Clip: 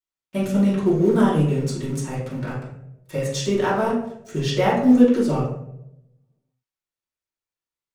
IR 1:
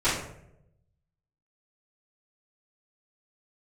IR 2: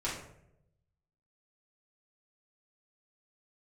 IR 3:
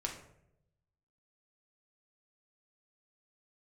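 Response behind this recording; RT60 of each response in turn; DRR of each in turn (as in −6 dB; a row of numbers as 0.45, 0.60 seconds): 2; 0.80 s, 0.80 s, non-exponential decay; −17.0, −8.5, 0.0 decibels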